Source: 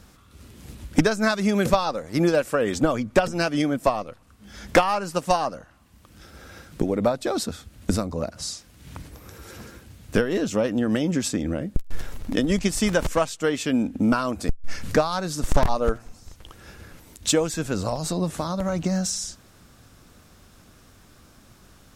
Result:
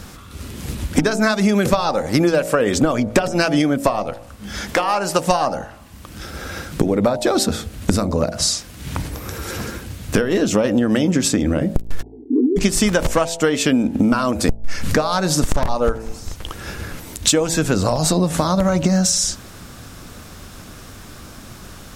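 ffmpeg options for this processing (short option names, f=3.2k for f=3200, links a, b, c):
-filter_complex "[0:a]asettb=1/sr,asplit=3[a][b][c];[a]atrim=end=4.614[d];[b]atrim=start=4.61:end=5.19,asetpts=PTS-STARTPTS,afade=t=in:d=0.004:c=qsin,afade=t=out:st=0.576:d=0.004:c=qsin,lowshelf=f=180:g=-10.5[e];[c]atrim=start=5.186[f];[d][e]acrossfade=d=0.004:c1=hsin:c2=qsin[g];[g][f]acrossfade=d=0.004:c1=qsin:c2=hsin,asplit=3[h][i][j];[h]afade=t=out:st=12.01:d=0.02[k];[i]asuperpass=centerf=330:order=20:qfactor=1.6,afade=t=in:st=12.01:d=0.02,afade=t=out:st=12.56:d=0.02[l];[j]afade=t=in:st=12.56:d=0.02[m];[k][l][m]amix=inputs=3:normalize=0,bandreject=f=55.72:t=h:w=4,bandreject=f=111.44:t=h:w=4,bandreject=f=167.16:t=h:w=4,bandreject=f=222.88:t=h:w=4,bandreject=f=278.6:t=h:w=4,bandreject=f=334.32:t=h:w=4,bandreject=f=390.04:t=h:w=4,bandreject=f=445.76:t=h:w=4,bandreject=f=501.48:t=h:w=4,bandreject=f=557.2:t=h:w=4,bandreject=f=612.92:t=h:w=4,bandreject=f=668.64:t=h:w=4,bandreject=f=724.36:t=h:w=4,bandreject=f=780.08:t=h:w=4,bandreject=f=835.8:t=h:w=4,bandreject=f=891.52:t=h:w=4,bandreject=f=947.24:t=h:w=4,acompressor=threshold=-28dB:ratio=6,alimiter=level_in=15.5dB:limit=-1dB:release=50:level=0:latency=1,volume=-1dB"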